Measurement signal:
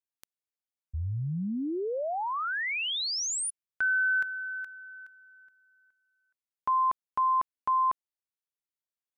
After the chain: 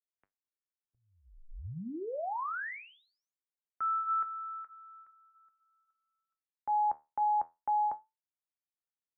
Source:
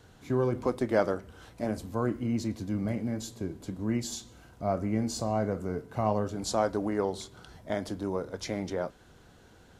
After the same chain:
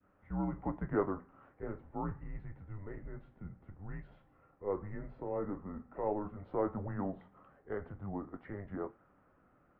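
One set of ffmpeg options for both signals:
-af "adynamicequalizer=threshold=0.0141:dfrequency=1100:dqfactor=0.75:tfrequency=1100:tqfactor=0.75:attack=5:release=100:ratio=0.375:range=2.5:mode=boostabove:tftype=bell,flanger=delay=10:depth=3.6:regen=-69:speed=0.23:shape=sinusoidal,highpass=f=250:t=q:w=0.5412,highpass=f=250:t=q:w=1.307,lowpass=f=2.2k:t=q:w=0.5176,lowpass=f=2.2k:t=q:w=0.7071,lowpass=f=2.2k:t=q:w=1.932,afreqshift=-200,volume=-4.5dB"

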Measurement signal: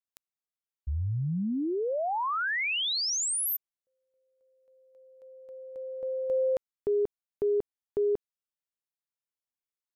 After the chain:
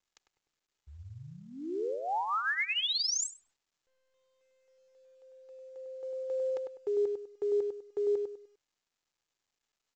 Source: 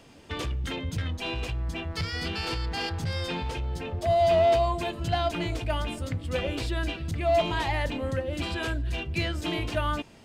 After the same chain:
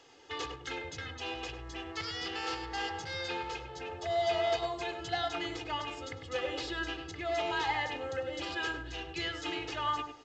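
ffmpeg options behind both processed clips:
-filter_complex "[0:a]highpass=f=300:p=1,lowshelf=f=450:g=-7,bandreject=f=2.4k:w=13,aecho=1:1:2.4:0.7,asplit=2[a][b];[b]adelay=100,lowpass=f=1.3k:p=1,volume=-4dB,asplit=2[c][d];[d]adelay=100,lowpass=f=1.3k:p=1,volume=0.31,asplit=2[e][f];[f]adelay=100,lowpass=f=1.3k:p=1,volume=0.31,asplit=2[g][h];[h]adelay=100,lowpass=f=1.3k:p=1,volume=0.31[i];[a][c][e][g][i]amix=inputs=5:normalize=0,volume=-3.5dB" -ar 16000 -c:a pcm_mulaw

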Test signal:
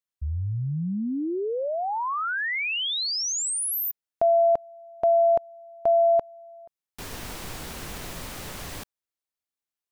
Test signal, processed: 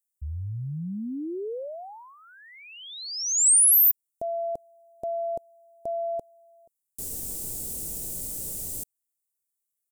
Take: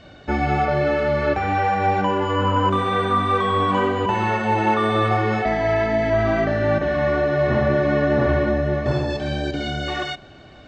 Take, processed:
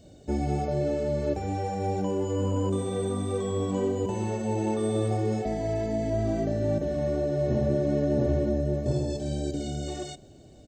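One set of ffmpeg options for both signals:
-af "firequalizer=gain_entry='entry(460,0);entry(1200,-21);entry(8000,15)':delay=0.05:min_phase=1,volume=-4.5dB"

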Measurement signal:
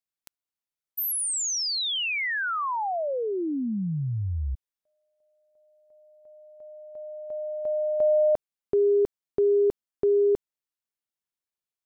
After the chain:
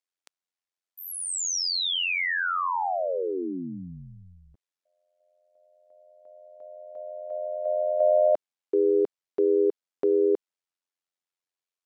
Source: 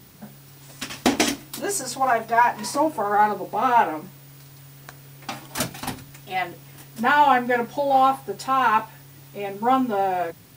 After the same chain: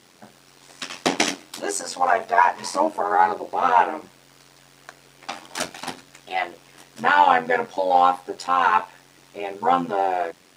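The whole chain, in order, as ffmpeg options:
-af "highpass=340,lowpass=7.9k,tremolo=f=89:d=0.788,volume=4.5dB"

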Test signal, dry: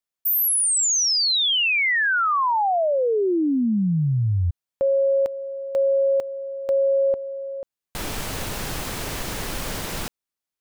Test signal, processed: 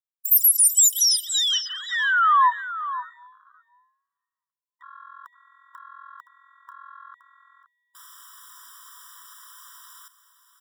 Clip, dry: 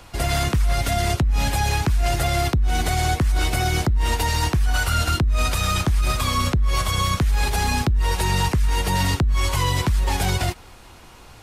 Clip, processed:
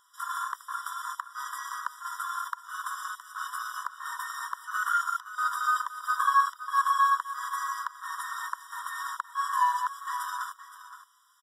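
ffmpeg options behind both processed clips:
-filter_complex "[0:a]equalizer=f=125:t=o:w=1:g=-7,equalizer=f=2k:t=o:w=1:g=-11,equalizer=f=4k:t=o:w=1:g=-6,afwtdn=0.0355,acrossover=split=310[a][b];[a]acompressor=threshold=-33dB:ratio=6:attack=5.1:release=385[c];[b]aecho=1:1:519:0.237[d];[c][d]amix=inputs=2:normalize=0,afftfilt=real='re*eq(mod(floor(b*sr/1024/990),2),1)':imag='im*eq(mod(floor(b*sr/1024/990),2),1)':win_size=1024:overlap=0.75,volume=8dB"

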